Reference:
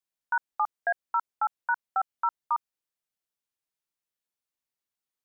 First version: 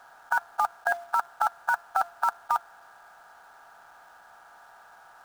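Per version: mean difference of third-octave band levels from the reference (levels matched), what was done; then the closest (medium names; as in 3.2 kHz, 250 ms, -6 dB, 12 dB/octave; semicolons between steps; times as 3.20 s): 11.5 dB: spectral levelling over time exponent 0.4; de-hum 345.1 Hz, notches 27; in parallel at -3.5 dB: companded quantiser 4-bit; on the sum: trim -4 dB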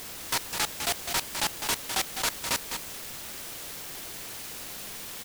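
29.0 dB: one-bit delta coder 64 kbps, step -30.5 dBFS; delay 205 ms -7 dB; delay time shaken by noise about 3 kHz, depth 0.25 ms; trim -1.5 dB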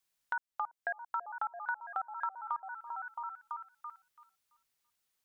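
3.0 dB: on a send: repeats whose band climbs or falls 334 ms, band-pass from 430 Hz, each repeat 0.7 oct, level -7 dB; on the sum: compression 2.5:1, threshold -48 dBFS, peak gain reduction 16.5 dB; peaking EQ 360 Hz -5.5 dB 2.8 oct; trim +9 dB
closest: third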